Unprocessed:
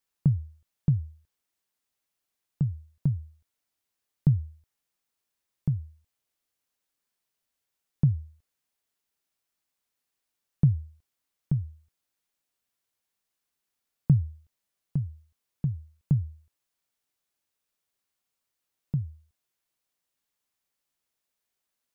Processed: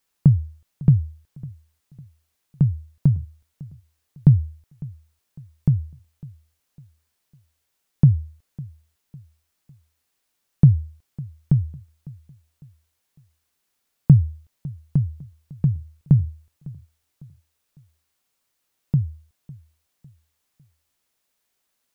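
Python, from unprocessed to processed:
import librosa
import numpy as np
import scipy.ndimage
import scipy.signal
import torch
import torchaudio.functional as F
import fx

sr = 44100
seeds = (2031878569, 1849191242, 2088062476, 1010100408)

y = fx.echo_feedback(x, sr, ms=553, feedback_pct=39, wet_db=-21)
y = F.gain(torch.from_numpy(y), 8.5).numpy()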